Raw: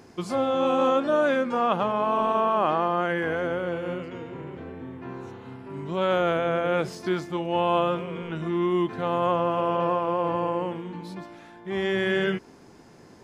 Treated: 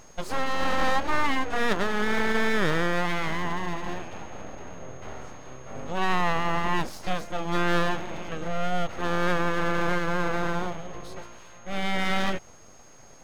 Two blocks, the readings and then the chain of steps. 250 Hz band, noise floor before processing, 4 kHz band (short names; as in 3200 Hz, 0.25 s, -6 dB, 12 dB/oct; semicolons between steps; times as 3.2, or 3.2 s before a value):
-2.5 dB, -50 dBFS, +3.0 dB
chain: full-wave rectifier; whine 6500 Hz -56 dBFS; gain +1 dB